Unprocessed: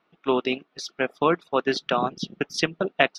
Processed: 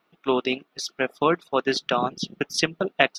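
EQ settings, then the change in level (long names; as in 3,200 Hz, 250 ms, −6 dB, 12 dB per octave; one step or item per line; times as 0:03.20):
high-shelf EQ 7,200 Hz +11.5 dB
0.0 dB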